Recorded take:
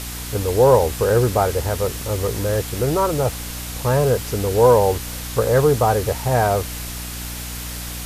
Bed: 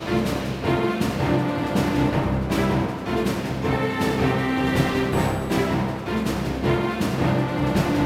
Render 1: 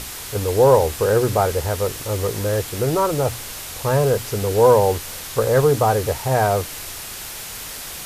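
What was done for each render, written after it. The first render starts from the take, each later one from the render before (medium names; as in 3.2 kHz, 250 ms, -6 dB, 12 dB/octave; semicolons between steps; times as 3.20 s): hum notches 60/120/180/240/300 Hz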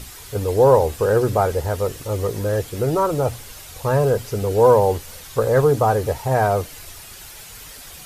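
noise reduction 9 dB, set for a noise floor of -33 dBFS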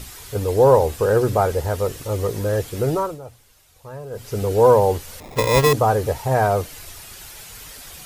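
2.90–4.39 s: dip -17 dB, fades 0.29 s; 5.20–5.73 s: sample-rate reducer 1.5 kHz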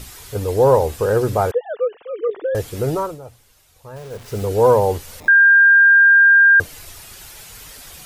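1.51–2.55 s: formants replaced by sine waves; 3.96–4.45 s: send-on-delta sampling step -37.5 dBFS; 5.28–6.60 s: bleep 1.6 kHz -7 dBFS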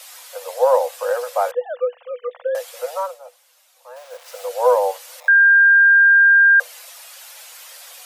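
Chebyshev high-pass 490 Hz, order 10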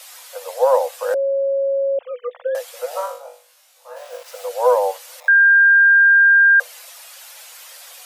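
1.14–1.99 s: bleep 549 Hz -16 dBFS; 2.89–4.23 s: flutter echo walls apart 3.5 m, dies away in 0.37 s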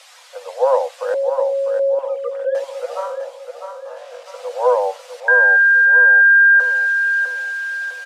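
distance through air 77 m; feedback delay 652 ms, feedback 43%, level -7 dB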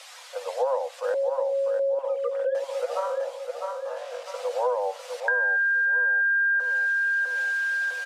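compression 4:1, threshold -24 dBFS, peak gain reduction 12.5 dB; attacks held to a fixed rise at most 340 dB/s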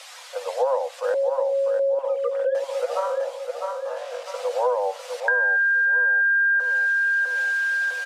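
trim +3 dB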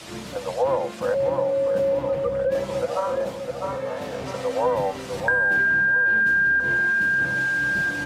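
add bed -14 dB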